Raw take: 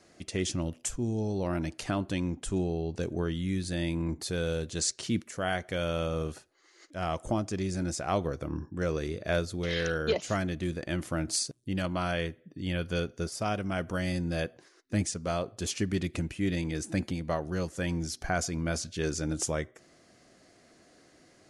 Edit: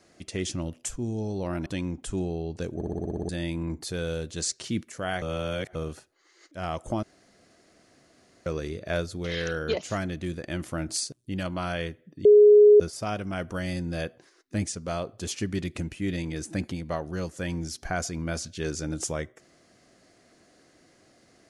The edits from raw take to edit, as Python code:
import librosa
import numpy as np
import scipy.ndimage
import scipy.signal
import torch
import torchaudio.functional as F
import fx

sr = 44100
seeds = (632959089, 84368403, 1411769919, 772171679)

y = fx.edit(x, sr, fx.cut(start_s=1.66, length_s=0.39),
    fx.stutter_over(start_s=3.14, slice_s=0.06, count=9),
    fx.reverse_span(start_s=5.61, length_s=0.53),
    fx.room_tone_fill(start_s=7.42, length_s=1.43),
    fx.bleep(start_s=12.64, length_s=0.55, hz=417.0, db=-10.5), tone=tone)